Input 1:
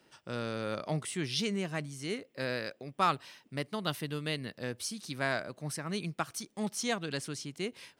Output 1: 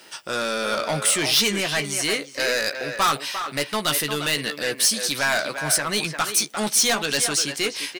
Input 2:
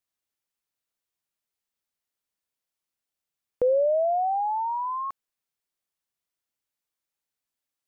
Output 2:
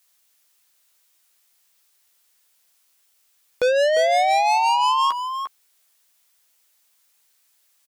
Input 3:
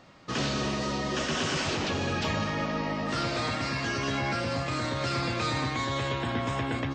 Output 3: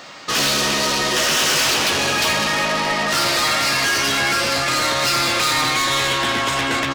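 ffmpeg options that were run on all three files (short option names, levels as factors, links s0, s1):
-filter_complex "[0:a]asplit=2[s0][s1];[s1]adelay=14,volume=0.355[s2];[s0][s2]amix=inputs=2:normalize=0,asplit=2[s3][s4];[s4]highpass=f=720:p=1,volume=14.1,asoftclip=type=tanh:threshold=0.2[s5];[s3][s5]amix=inputs=2:normalize=0,lowpass=f=5400:p=1,volume=0.501,crystalizer=i=2.5:c=0,asplit=2[s6][s7];[s7]adelay=350,highpass=300,lowpass=3400,asoftclip=type=hard:threshold=0.106,volume=0.501[s8];[s6][s8]amix=inputs=2:normalize=0"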